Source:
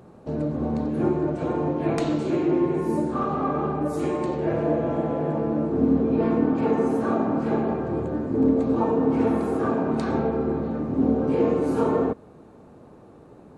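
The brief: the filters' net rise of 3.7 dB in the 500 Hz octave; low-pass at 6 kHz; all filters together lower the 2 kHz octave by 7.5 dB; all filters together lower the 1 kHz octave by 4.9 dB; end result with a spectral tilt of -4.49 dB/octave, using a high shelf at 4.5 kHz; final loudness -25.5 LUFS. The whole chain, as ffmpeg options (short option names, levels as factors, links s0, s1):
-af "lowpass=6000,equalizer=f=500:t=o:g=6.5,equalizer=f=1000:t=o:g=-8,equalizer=f=2000:t=o:g=-6.5,highshelf=f=4500:g=-4.5,volume=0.668"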